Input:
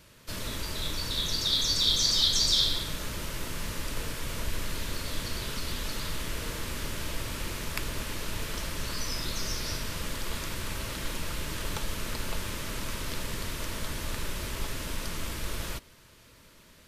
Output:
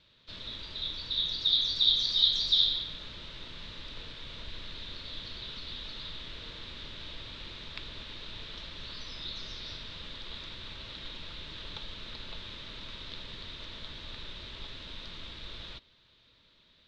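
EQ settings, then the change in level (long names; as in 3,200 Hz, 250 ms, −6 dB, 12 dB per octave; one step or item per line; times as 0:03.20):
transistor ladder low-pass 4,000 Hz, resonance 75%
0.0 dB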